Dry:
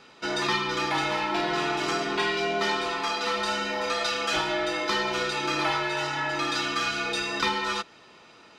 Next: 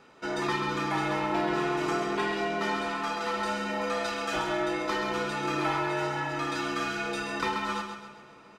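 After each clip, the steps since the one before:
parametric band 4,100 Hz −9.5 dB 1.7 octaves
repeating echo 132 ms, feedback 44%, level −7 dB
on a send at −19 dB: convolution reverb RT60 5.3 s, pre-delay 76 ms
on the sum: level −1.5 dB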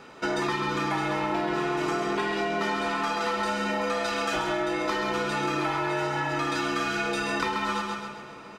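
downward compressor, threshold −33 dBFS, peak gain reduction 9 dB
level +8.5 dB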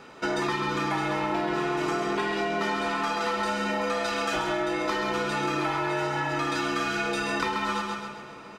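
no processing that can be heard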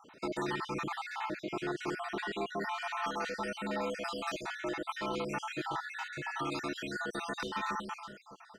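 time-frequency cells dropped at random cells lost 55%
level −6 dB

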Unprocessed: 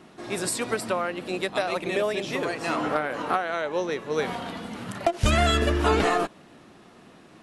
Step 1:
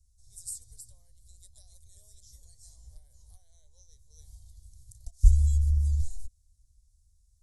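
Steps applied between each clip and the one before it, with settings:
inverse Chebyshev band-stop filter 160–2,800 Hz, stop band 50 dB
spectral tilt −2.5 dB per octave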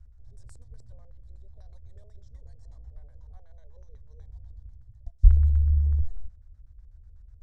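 auto-filter low-pass square 8.1 Hz 450–1,500 Hz
reversed playback
upward compression, threshold −38 dBFS
reversed playback
level +2.5 dB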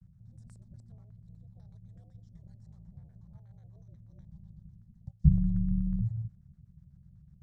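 ring modulation 110 Hz
pitch vibrato 0.37 Hz 35 cents
level −4.5 dB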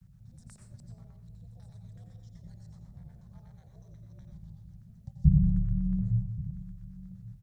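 single-tap delay 1,127 ms −18 dB
convolution reverb RT60 0.50 s, pre-delay 82 ms, DRR 3.5 dB
one half of a high-frequency compander encoder only

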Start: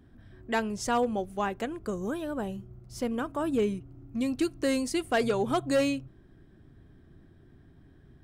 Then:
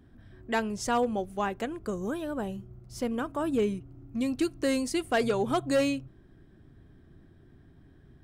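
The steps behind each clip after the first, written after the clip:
no processing that can be heard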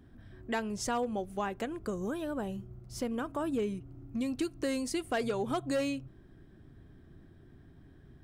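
downward compressor 2 to 1, threshold −33 dBFS, peak gain reduction 6.5 dB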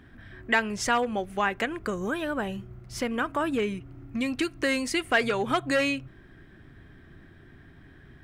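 parametric band 2,000 Hz +12.5 dB 1.7 octaves
level +3.5 dB

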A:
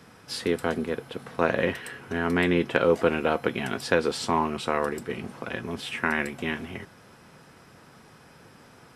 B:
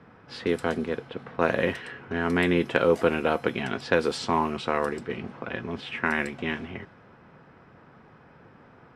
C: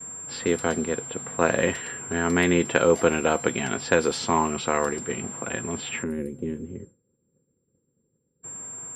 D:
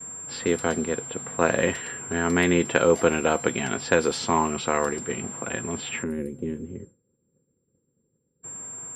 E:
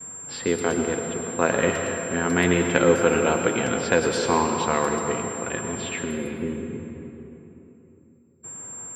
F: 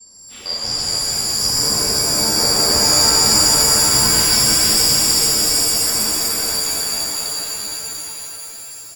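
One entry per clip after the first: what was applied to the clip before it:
low-pass that shuts in the quiet parts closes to 1,800 Hz, open at −19.5 dBFS
steady tone 7,400 Hz −37 dBFS; gain on a spectral selection 0:06.03–0:08.43, 550–8,500 Hz −24 dB; downward expander −41 dBFS; level +2 dB
no processing that can be heard
convolution reverb RT60 3.5 s, pre-delay 98 ms, DRR 4 dB
band-splitting scrambler in four parts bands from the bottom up 2341; bouncing-ball delay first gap 450 ms, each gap 0.75×, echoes 5; reverb with rising layers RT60 3.7 s, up +7 semitones, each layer −2 dB, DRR −7 dB; level −5 dB

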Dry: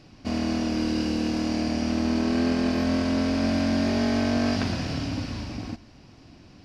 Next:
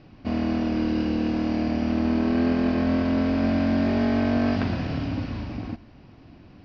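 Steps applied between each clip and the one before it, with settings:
high-frequency loss of the air 270 metres
level +2 dB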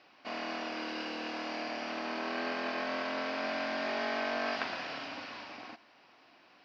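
high-pass filter 830 Hz 12 dB per octave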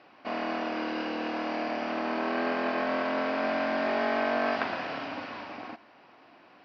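low-pass filter 1,400 Hz 6 dB per octave
level +8 dB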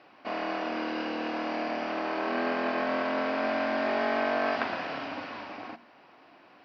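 mains-hum notches 60/120/180/240 Hz

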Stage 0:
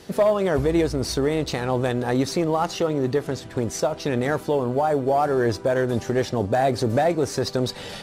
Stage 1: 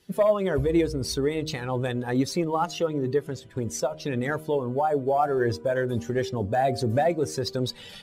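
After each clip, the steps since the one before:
spectral dynamics exaggerated over time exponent 1.5
hum removal 77.75 Hz, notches 9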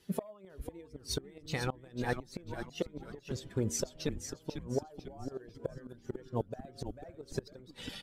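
gate with flip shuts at −18 dBFS, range −27 dB
echo with shifted repeats 496 ms, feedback 38%, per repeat −140 Hz, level −8 dB
level −2.5 dB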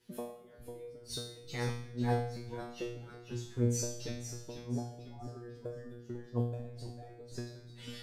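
tuned comb filter 120 Hz, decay 0.6 s, harmonics all, mix 100%
on a send at −15.5 dB: convolution reverb RT60 1.9 s, pre-delay 4 ms
on the sum: level +11 dB

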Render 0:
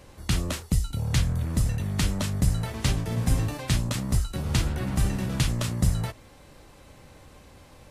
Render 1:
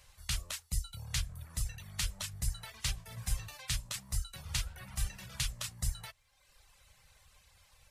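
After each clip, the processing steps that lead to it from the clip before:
reverb reduction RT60 1 s
guitar amp tone stack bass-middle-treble 10-0-10
level −2.5 dB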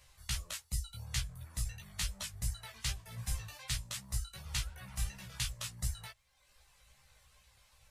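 chorus effect 2.7 Hz, delay 15 ms, depth 2.6 ms
level +1.5 dB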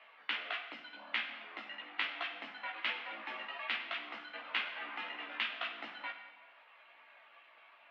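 convolution reverb RT60 1.4 s, pre-delay 33 ms, DRR 6 dB
single-sideband voice off tune +100 Hz 290–2,800 Hz
level +10 dB

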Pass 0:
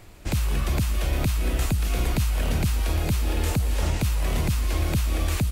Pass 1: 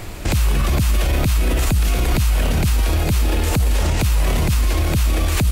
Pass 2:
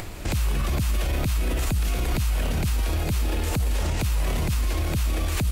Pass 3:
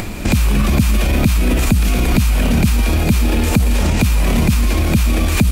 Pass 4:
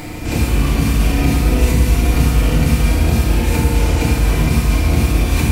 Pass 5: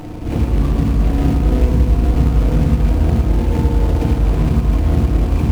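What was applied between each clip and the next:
in parallel at −1 dB: compressor whose output falls as the input rises −27 dBFS, ratio −1; on the sum: brickwall limiter −18.5 dBFS, peak gain reduction 9 dB; level +8.5 dB
upward compression, threshold −23 dBFS; level −7 dB
hollow resonant body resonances 220/2,400 Hz, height 11 dB, ringing for 45 ms; level +9 dB
feedback delay network reverb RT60 2.2 s, low-frequency decay 0.85×, high-frequency decay 0.65×, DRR −9 dB; level −10 dB
running median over 25 samples

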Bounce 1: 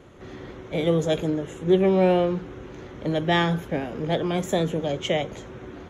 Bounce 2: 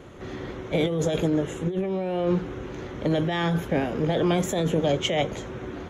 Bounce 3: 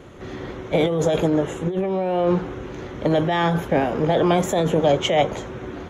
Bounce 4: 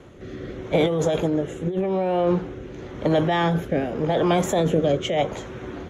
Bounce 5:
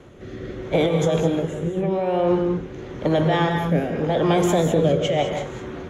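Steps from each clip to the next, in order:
compressor whose output falls as the input rises −25 dBFS, ratio −1; level +1.5 dB
dynamic equaliser 840 Hz, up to +7 dB, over −39 dBFS, Q 0.91; level +2 dB
rotating-speaker cabinet horn 0.85 Hz
reverb whose tail is shaped and stops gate 230 ms rising, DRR 4.5 dB

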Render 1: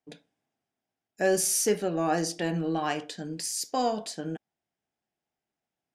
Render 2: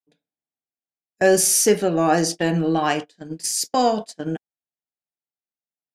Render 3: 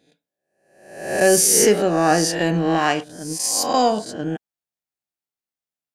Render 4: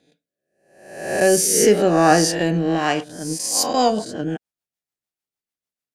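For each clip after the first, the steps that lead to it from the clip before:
noise gate −34 dBFS, range −26 dB; level +8.5 dB
peak hold with a rise ahead of every peak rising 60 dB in 0.72 s
rotating-speaker cabinet horn 0.85 Hz, later 6.7 Hz, at 0:03.13; level +3 dB

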